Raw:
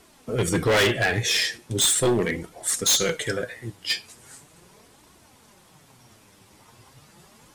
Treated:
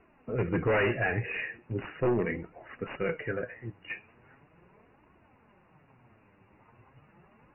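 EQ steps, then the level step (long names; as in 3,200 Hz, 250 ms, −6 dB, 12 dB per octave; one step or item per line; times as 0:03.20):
linear-phase brick-wall low-pass 2,900 Hz
high-frequency loss of the air 190 metres
−5.0 dB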